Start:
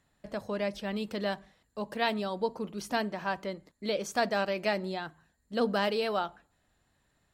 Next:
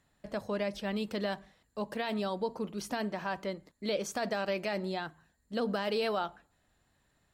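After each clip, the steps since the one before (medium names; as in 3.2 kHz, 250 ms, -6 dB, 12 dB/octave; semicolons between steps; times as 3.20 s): peak limiter -22 dBFS, peak gain reduction 9 dB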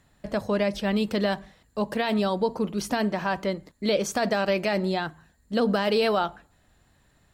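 bass shelf 180 Hz +4.5 dB; trim +8 dB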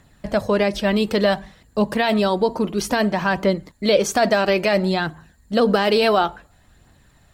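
phaser 0.58 Hz, delay 3.3 ms, feedback 31%; trim +6.5 dB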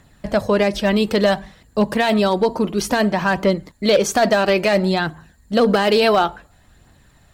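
hard clipper -10 dBFS, distortion -24 dB; trim +2 dB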